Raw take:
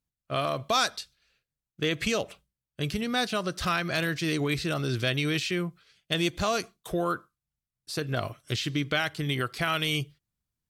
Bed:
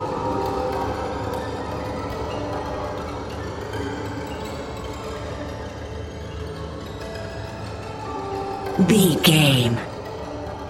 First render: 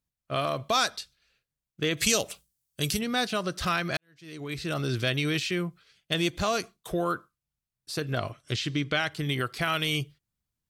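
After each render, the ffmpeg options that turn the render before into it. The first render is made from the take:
-filter_complex "[0:a]asettb=1/sr,asplit=3[a][b][c];[a]atrim=end=1.974[d];[b]atrim=start=1.97:end=2.99,asetpts=PTS-STARTPTS,afade=t=in:d=0.004:c=qsin,afade=t=out:st=1.016:d=0.004:c=qsin,bass=f=250:g=0,treble=f=4k:g=15[e];[c]atrim=start=2.986[f];[d][e]acrossfade=d=0.004:c1=hsin:c2=qsin[g];[g][f]acrossfade=d=0.004:c1=qsin:c2=hsin,asettb=1/sr,asplit=3[h][i][j];[h]atrim=end=8.174[k];[i]atrim=start=8.17:end=9.12,asetpts=PTS-STARTPTS,afade=t=in:d=0.004:c=qsin,afade=t=out:st=0.946:d=0.004:c=qsin,lowpass=8.7k[l];[j]atrim=start=9.116[m];[k][l]acrossfade=d=0.004:c1=hsin:c2=qsin[n];[n][m]acrossfade=d=0.004:c1=qsin:c2=hsin,asplit=2[o][p];[o]atrim=end=3.97,asetpts=PTS-STARTPTS,afade=t=out:st=3.966:d=0.004:c=hsin[q];[p]atrim=start=3.97,asetpts=PTS-STARTPTS,afade=t=in:d=0.81:c=qua[r];[q][r]concat=n=2:v=0:a=1"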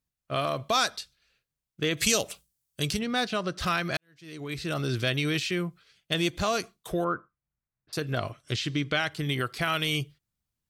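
-filter_complex "[0:a]asettb=1/sr,asplit=3[a][b][c];[a]atrim=end=2.834[d];[b]atrim=start=2.83:end=3.6,asetpts=PTS-STARTPTS,afade=t=in:d=0.004:c=qsin,afade=t=out:st=0.766:d=0.004:c=qsin,adynamicsmooth=sensitivity=3.5:basefreq=6.1k[e];[c]atrim=start=3.596[f];[d][e]acrossfade=d=0.004:c1=hsin:c2=qsin[g];[g][f]acrossfade=d=0.004:c1=qsin:c2=hsin,asettb=1/sr,asplit=3[h][i][j];[h]atrim=end=7.044[k];[i]atrim=start=7.04:end=7.93,asetpts=PTS-STARTPTS,afade=t=in:d=0.004:c=qsin,afade=t=out:st=0.886:d=0.004:c=qsin,lowpass=f=2.1k:w=0.5412,lowpass=f=2.1k:w=1.3066[l];[j]atrim=start=7.926[m];[k][l]acrossfade=d=0.004:c1=hsin:c2=qsin[n];[n][m]acrossfade=d=0.004:c1=qsin:c2=hsin"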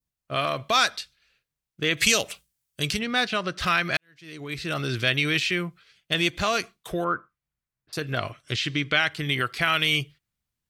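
-af "adynamicequalizer=threshold=0.00794:dfrequency=2200:dqfactor=0.78:tfrequency=2200:tqfactor=0.78:attack=5:release=100:ratio=0.375:range=4:mode=boostabove:tftype=bell"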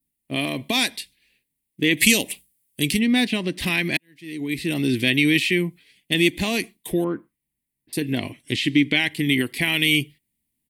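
-af "firequalizer=gain_entry='entry(120,0);entry(260,15);entry(420,3);entry(610,-5);entry(930,0);entry(1300,-21);entry(1900,5);entry(6000,-3);entry(9400,13);entry(14000,11)':delay=0.05:min_phase=1"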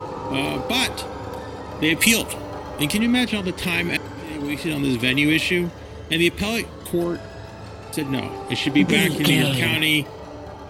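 -filter_complex "[1:a]volume=-5dB[a];[0:a][a]amix=inputs=2:normalize=0"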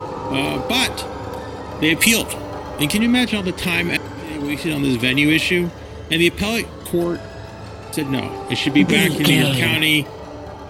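-af "volume=3dB,alimiter=limit=-2dB:level=0:latency=1"

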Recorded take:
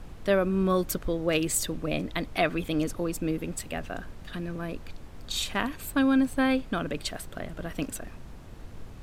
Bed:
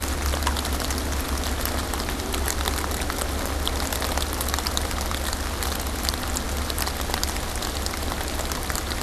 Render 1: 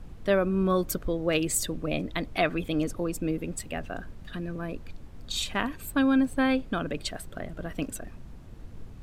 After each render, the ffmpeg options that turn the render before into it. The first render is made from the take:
-af "afftdn=nr=6:nf=-44"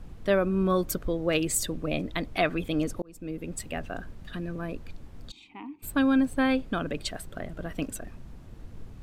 -filter_complex "[0:a]asplit=3[a][b][c];[a]afade=t=out:st=5.3:d=0.02[d];[b]asplit=3[e][f][g];[e]bandpass=f=300:t=q:w=8,volume=0dB[h];[f]bandpass=f=870:t=q:w=8,volume=-6dB[i];[g]bandpass=f=2.24k:t=q:w=8,volume=-9dB[j];[h][i][j]amix=inputs=3:normalize=0,afade=t=in:st=5.3:d=0.02,afade=t=out:st=5.82:d=0.02[k];[c]afade=t=in:st=5.82:d=0.02[l];[d][k][l]amix=inputs=3:normalize=0,asplit=2[m][n];[m]atrim=end=3.02,asetpts=PTS-STARTPTS,afade=t=out:st=3.016:d=0.004:c=hsin[o];[n]atrim=start=3.02,asetpts=PTS-STARTPTS,afade=t=in:d=0.6[p];[o][p]concat=n=2:v=0:a=1"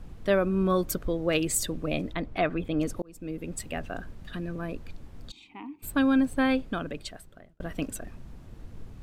-filter_complex "[0:a]asettb=1/sr,asplit=3[a][b][c];[a]atrim=end=2.134[d];[b]atrim=start=2.13:end=2.81,asetpts=PTS-STARTPTS,afade=t=in:d=0.004:c=qsin,afade=t=out:st=0.676:d=0.004:c=qsin,lowpass=f=1.8k:p=1[e];[c]atrim=start=2.806[f];[d][e]acrossfade=d=0.004:c1=hsin:c2=qsin[g];[g][f]acrossfade=d=0.004:c1=qsin:c2=hsin,asplit=2[h][i];[h]atrim=end=7.6,asetpts=PTS-STARTPTS,afade=t=out:st=6.54:d=1.06[j];[i]atrim=start=7.6,asetpts=PTS-STARTPTS,afade=t=in:d=0.004:c=hsin[k];[j][k]concat=n=2:v=0:a=1"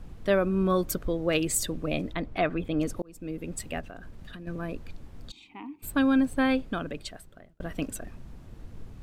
-filter_complex "[0:a]asettb=1/sr,asplit=3[a][b][c];[a]atrim=end=3.804[d];[b]atrim=start=3.8:end=4.47,asetpts=PTS-STARTPTS,afade=t=in:d=0.004:c=qsin,afade=t=out:st=0.666:d=0.004:c=qsin,acompressor=threshold=-38dB:ratio=10:attack=3.2:release=140:knee=1:detection=peak[e];[c]atrim=start=4.466[f];[d][e]acrossfade=d=0.004:c1=hsin:c2=qsin[g];[g][f]acrossfade=d=0.004:c1=qsin:c2=hsin"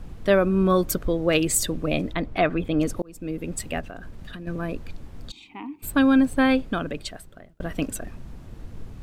-af "volume=5dB"

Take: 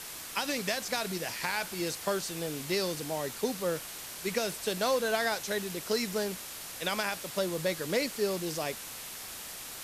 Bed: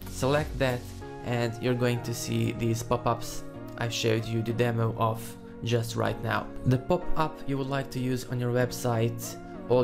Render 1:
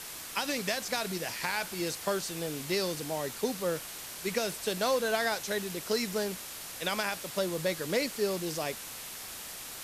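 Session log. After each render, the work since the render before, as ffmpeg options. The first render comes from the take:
-af anull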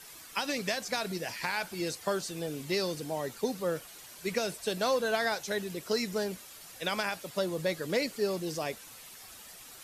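-af "afftdn=nr=10:nf=-43"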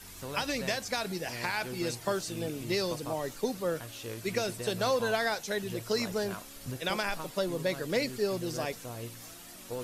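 -filter_complex "[1:a]volume=-15dB[a];[0:a][a]amix=inputs=2:normalize=0"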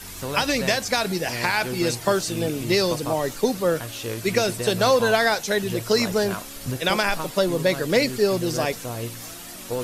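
-af "volume=10dB"

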